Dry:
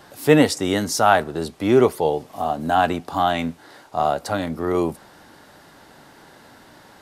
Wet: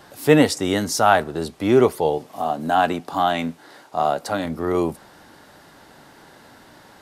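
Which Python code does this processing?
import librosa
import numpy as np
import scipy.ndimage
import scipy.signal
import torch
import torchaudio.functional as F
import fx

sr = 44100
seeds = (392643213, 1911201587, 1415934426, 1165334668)

y = fx.highpass(x, sr, hz=130.0, slope=12, at=(2.18, 4.45))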